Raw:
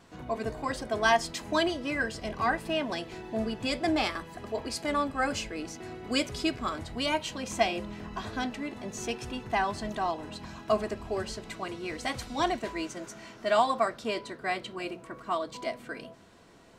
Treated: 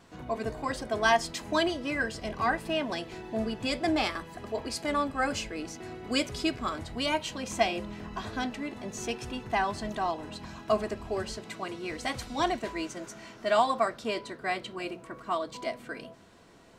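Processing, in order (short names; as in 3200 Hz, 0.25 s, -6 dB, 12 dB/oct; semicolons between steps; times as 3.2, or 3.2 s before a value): 11.38–11.88 HPF 100 Hz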